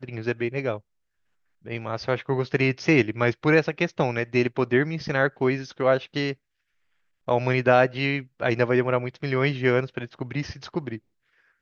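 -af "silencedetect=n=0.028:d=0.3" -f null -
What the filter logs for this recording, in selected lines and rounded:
silence_start: 0.77
silence_end: 1.67 | silence_duration: 0.90
silence_start: 6.33
silence_end: 7.28 | silence_duration: 0.95
silence_start: 10.96
silence_end: 11.61 | silence_duration: 0.65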